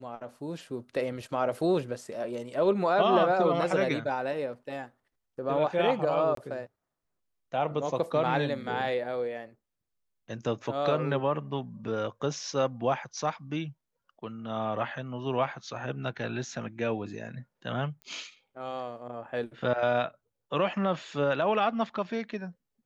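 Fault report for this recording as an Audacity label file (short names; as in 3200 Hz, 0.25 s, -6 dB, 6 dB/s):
6.350000	6.370000	gap 23 ms
18.020000	18.020000	pop -31 dBFS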